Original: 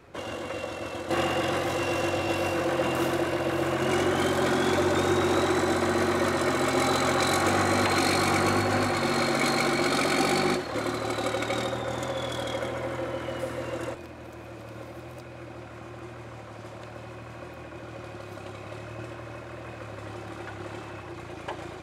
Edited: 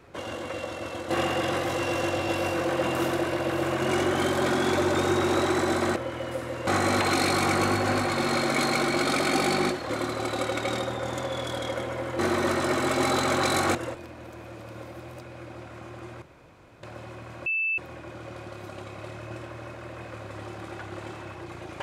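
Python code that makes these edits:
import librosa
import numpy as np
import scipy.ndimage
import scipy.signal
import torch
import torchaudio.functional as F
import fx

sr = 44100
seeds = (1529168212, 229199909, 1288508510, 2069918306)

y = fx.edit(x, sr, fx.swap(start_s=5.96, length_s=1.56, other_s=13.04, other_length_s=0.71),
    fx.room_tone_fill(start_s=16.22, length_s=0.61),
    fx.insert_tone(at_s=17.46, length_s=0.32, hz=2640.0, db=-23.5), tone=tone)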